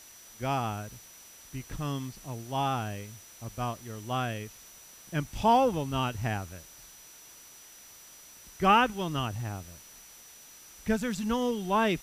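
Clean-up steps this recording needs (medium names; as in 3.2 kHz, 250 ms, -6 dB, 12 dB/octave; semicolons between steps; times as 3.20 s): band-stop 5.9 kHz, Q 30; noise reduction 23 dB, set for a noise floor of -52 dBFS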